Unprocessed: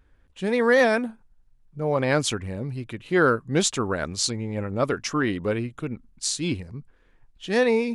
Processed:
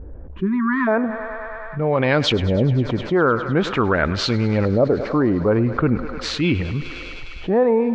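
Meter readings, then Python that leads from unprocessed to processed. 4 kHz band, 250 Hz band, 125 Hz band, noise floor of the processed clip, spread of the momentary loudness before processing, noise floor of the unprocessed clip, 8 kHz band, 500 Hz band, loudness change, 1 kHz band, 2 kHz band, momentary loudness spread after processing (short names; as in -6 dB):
+3.5 dB, +7.0 dB, +9.0 dB, -34 dBFS, 13 LU, -59 dBFS, -11.5 dB, +4.0 dB, +4.5 dB, +5.0 dB, +2.0 dB, 11 LU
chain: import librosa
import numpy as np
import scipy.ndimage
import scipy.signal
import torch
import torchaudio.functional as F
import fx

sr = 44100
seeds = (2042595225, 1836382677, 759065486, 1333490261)

y = fx.spec_repair(x, sr, seeds[0], start_s=0.37, length_s=0.48, low_hz=390.0, high_hz=960.0, source='before')
y = fx.peak_eq(y, sr, hz=66.0, db=9.5, octaves=0.22)
y = fx.rider(y, sr, range_db=10, speed_s=0.5)
y = fx.filter_lfo_lowpass(y, sr, shape='saw_up', hz=0.43, low_hz=510.0, high_hz=3900.0, q=1.5)
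y = fx.air_absorb(y, sr, metres=110.0)
y = fx.echo_thinned(y, sr, ms=102, feedback_pct=85, hz=310.0, wet_db=-19)
y = fx.env_flatten(y, sr, amount_pct=50)
y = F.gain(torch.from_numpy(y), 2.5).numpy()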